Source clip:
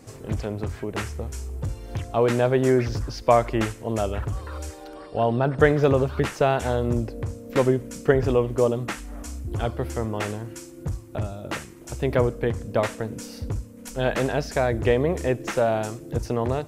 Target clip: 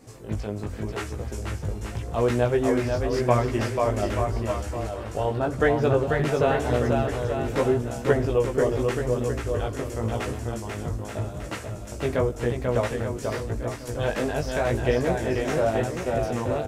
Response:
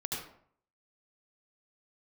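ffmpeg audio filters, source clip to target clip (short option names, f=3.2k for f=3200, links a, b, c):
-af "aecho=1:1:490|882|1196|1446|1647:0.631|0.398|0.251|0.158|0.1,flanger=delay=16:depth=3.7:speed=0.87"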